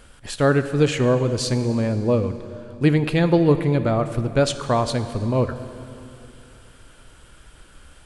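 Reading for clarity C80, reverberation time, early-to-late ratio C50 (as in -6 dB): 12.0 dB, 2.8 s, 11.0 dB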